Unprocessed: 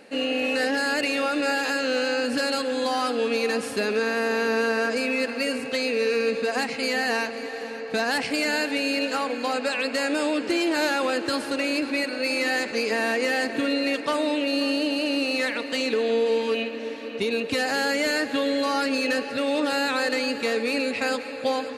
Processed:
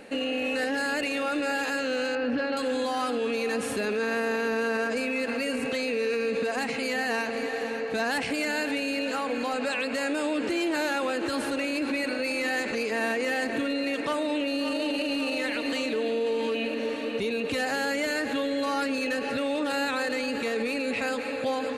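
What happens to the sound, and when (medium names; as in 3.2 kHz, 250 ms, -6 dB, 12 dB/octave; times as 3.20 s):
2.15–2.57 s: distance through air 290 m
14.08–15.06 s: echo throw 560 ms, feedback 60%, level -5 dB
whole clip: bass shelf 74 Hz +11.5 dB; peak limiter -23 dBFS; peaking EQ 4.9 kHz -6.5 dB 0.38 oct; trim +2.5 dB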